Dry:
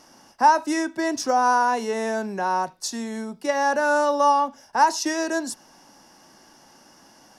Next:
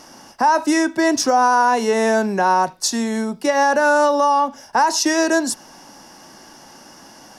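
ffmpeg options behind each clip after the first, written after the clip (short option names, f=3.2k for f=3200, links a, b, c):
-af "alimiter=limit=-17dB:level=0:latency=1:release=139,volume=9dB"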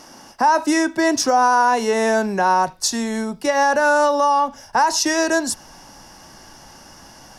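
-af "asubboost=boost=5:cutoff=110"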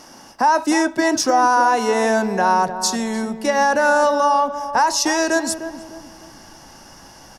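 -filter_complex "[0:a]asplit=2[a][b];[b]adelay=303,lowpass=f=910:p=1,volume=-8.5dB,asplit=2[c][d];[d]adelay=303,lowpass=f=910:p=1,volume=0.43,asplit=2[e][f];[f]adelay=303,lowpass=f=910:p=1,volume=0.43,asplit=2[g][h];[h]adelay=303,lowpass=f=910:p=1,volume=0.43,asplit=2[i][j];[j]adelay=303,lowpass=f=910:p=1,volume=0.43[k];[a][c][e][g][i][k]amix=inputs=6:normalize=0"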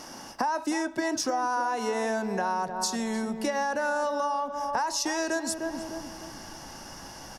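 -af "acompressor=threshold=-27dB:ratio=5"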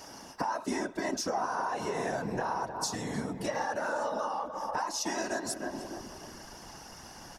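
-af "afftfilt=real='hypot(re,im)*cos(2*PI*random(0))':imag='hypot(re,im)*sin(2*PI*random(1))':win_size=512:overlap=0.75,volume=1.5dB"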